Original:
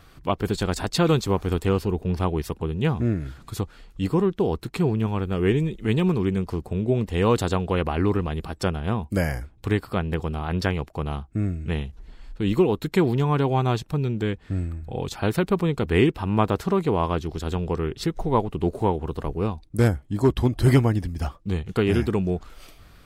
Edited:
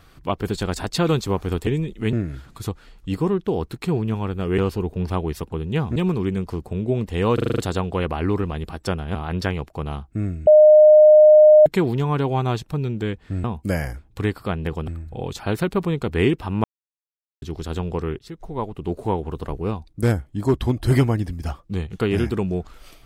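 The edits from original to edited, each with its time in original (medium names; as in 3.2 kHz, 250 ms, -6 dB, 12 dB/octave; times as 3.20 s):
1.67–3.05 s: swap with 5.50–5.96 s
7.34 s: stutter 0.04 s, 7 plays
8.91–10.35 s: move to 14.64 s
11.67–12.86 s: bleep 611 Hz -6.5 dBFS
16.40–17.18 s: mute
17.95–18.97 s: fade in, from -15.5 dB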